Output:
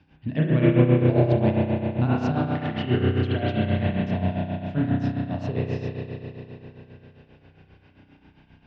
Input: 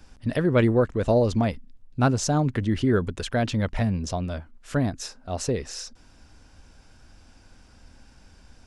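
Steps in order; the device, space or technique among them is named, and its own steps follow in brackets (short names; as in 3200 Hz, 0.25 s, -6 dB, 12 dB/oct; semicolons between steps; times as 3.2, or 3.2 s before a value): 2.31–2.86 tilt +2.5 dB/oct; combo amplifier with spring reverb and tremolo (spring tank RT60 3.6 s, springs 32 ms, chirp 45 ms, DRR -7 dB; tremolo 7.5 Hz, depth 68%; speaker cabinet 83–3700 Hz, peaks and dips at 89 Hz +6 dB, 150 Hz +10 dB, 300 Hz +4 dB, 500 Hz -4 dB, 1300 Hz -7 dB, 2700 Hz +5 dB); gain -4.5 dB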